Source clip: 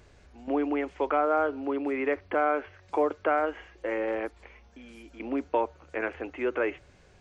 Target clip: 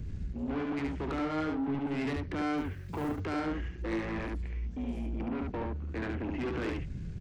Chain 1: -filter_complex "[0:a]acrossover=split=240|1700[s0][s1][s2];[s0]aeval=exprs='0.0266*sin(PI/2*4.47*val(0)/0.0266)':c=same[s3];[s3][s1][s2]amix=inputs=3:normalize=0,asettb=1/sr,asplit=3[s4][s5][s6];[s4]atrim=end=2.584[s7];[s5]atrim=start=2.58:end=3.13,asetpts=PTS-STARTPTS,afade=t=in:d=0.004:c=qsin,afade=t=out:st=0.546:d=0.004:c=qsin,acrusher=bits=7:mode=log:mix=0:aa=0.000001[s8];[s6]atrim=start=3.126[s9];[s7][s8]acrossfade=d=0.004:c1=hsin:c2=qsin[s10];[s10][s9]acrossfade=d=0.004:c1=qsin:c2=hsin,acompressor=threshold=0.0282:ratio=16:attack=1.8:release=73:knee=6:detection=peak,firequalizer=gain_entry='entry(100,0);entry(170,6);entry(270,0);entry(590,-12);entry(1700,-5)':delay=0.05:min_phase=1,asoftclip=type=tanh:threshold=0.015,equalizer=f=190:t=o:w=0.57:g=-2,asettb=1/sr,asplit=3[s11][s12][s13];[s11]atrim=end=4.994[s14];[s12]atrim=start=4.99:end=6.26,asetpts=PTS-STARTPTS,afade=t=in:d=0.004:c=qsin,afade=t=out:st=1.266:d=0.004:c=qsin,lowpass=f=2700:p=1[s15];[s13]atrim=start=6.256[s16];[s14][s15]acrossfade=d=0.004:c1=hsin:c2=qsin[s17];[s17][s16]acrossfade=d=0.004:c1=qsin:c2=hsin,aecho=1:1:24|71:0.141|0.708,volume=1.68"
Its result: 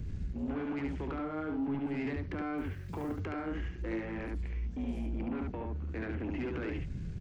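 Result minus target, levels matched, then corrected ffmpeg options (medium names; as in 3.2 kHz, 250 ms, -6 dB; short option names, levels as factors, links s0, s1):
compression: peak gain reduction +10 dB
-filter_complex "[0:a]acrossover=split=240|1700[s0][s1][s2];[s0]aeval=exprs='0.0266*sin(PI/2*4.47*val(0)/0.0266)':c=same[s3];[s3][s1][s2]amix=inputs=3:normalize=0,asettb=1/sr,asplit=3[s4][s5][s6];[s4]atrim=end=2.584[s7];[s5]atrim=start=2.58:end=3.13,asetpts=PTS-STARTPTS,afade=t=in:d=0.004:c=qsin,afade=t=out:st=0.546:d=0.004:c=qsin,acrusher=bits=7:mode=log:mix=0:aa=0.000001[s8];[s6]atrim=start=3.126[s9];[s7][s8]acrossfade=d=0.004:c1=hsin:c2=qsin[s10];[s10][s9]acrossfade=d=0.004:c1=qsin:c2=hsin,acompressor=threshold=0.106:ratio=16:attack=1.8:release=73:knee=6:detection=peak,firequalizer=gain_entry='entry(100,0);entry(170,6);entry(270,0);entry(590,-12);entry(1700,-5)':delay=0.05:min_phase=1,asoftclip=type=tanh:threshold=0.015,equalizer=f=190:t=o:w=0.57:g=-2,asettb=1/sr,asplit=3[s11][s12][s13];[s11]atrim=end=4.994[s14];[s12]atrim=start=4.99:end=6.26,asetpts=PTS-STARTPTS,afade=t=in:d=0.004:c=qsin,afade=t=out:st=1.266:d=0.004:c=qsin,lowpass=f=2700:p=1[s15];[s13]atrim=start=6.256[s16];[s14][s15]acrossfade=d=0.004:c1=hsin:c2=qsin[s17];[s17][s16]acrossfade=d=0.004:c1=qsin:c2=hsin,aecho=1:1:24|71:0.141|0.708,volume=1.68"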